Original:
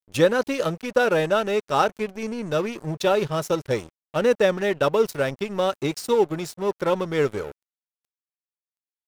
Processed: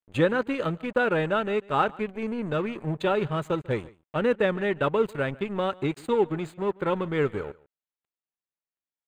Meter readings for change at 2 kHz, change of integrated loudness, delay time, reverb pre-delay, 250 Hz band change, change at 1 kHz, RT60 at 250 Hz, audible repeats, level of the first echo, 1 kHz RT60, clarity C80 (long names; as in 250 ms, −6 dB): −2.0 dB, −3.5 dB, 144 ms, no reverb audible, −1.0 dB, −3.0 dB, no reverb audible, 1, −23.0 dB, no reverb audible, no reverb audible